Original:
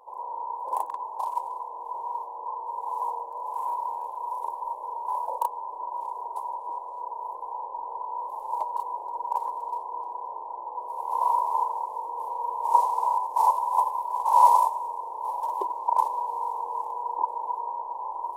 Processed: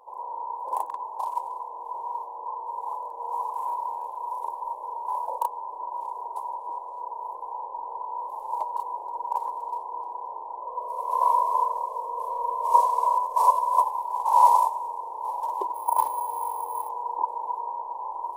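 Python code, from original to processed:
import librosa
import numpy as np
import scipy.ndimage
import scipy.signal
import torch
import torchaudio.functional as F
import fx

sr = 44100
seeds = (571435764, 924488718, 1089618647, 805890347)

y = fx.comb(x, sr, ms=1.8, depth=0.98, at=(10.6, 13.81), fade=0.02)
y = fx.resample_bad(y, sr, factor=4, down='none', up='hold', at=(15.74, 16.89))
y = fx.edit(y, sr, fx.reverse_span(start_s=2.93, length_s=0.57), tone=tone)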